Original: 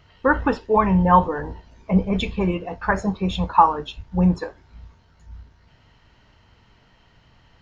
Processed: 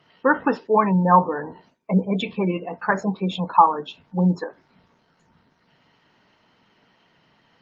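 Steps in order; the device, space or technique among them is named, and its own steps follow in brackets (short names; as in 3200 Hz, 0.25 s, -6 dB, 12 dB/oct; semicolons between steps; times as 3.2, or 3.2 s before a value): 1.3–2.94 gate with hold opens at -38 dBFS; noise-suppressed video call (HPF 160 Hz 24 dB/oct; spectral gate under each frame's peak -30 dB strong; Opus 24 kbps 48000 Hz)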